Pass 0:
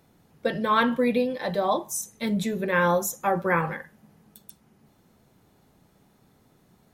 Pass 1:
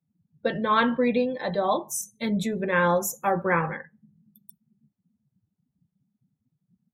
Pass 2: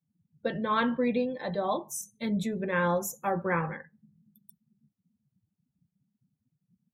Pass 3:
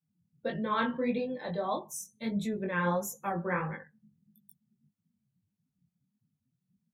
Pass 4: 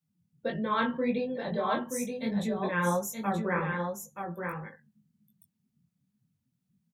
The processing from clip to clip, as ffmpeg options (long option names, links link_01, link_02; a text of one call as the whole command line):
ffmpeg -i in.wav -af "afftdn=noise_reduction=34:noise_floor=-45" out.wav
ffmpeg -i in.wav -af "equalizer=frequency=110:width=0.38:gain=3.5,volume=-6dB" out.wav
ffmpeg -i in.wav -af "flanger=delay=18.5:depth=5.1:speed=1.6" out.wav
ffmpeg -i in.wav -af "aecho=1:1:926:0.531,volume=1.5dB" out.wav